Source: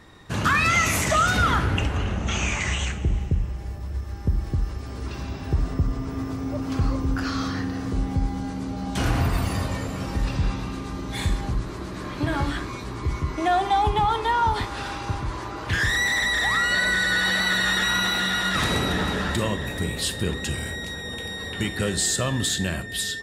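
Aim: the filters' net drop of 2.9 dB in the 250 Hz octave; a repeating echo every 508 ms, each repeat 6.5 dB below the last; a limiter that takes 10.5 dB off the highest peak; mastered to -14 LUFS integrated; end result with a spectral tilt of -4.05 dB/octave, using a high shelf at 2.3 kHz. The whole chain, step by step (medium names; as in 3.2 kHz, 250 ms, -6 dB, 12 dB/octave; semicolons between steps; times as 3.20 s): peaking EQ 250 Hz -4 dB; treble shelf 2.3 kHz +8.5 dB; peak limiter -16 dBFS; feedback delay 508 ms, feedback 47%, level -6.5 dB; trim +10.5 dB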